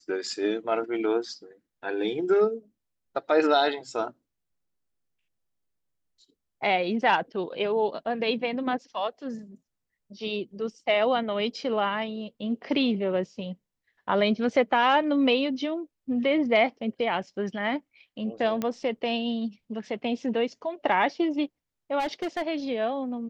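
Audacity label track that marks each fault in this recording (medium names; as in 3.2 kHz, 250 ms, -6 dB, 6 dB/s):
18.620000	18.620000	pop -16 dBFS
21.990000	22.430000	clipped -25 dBFS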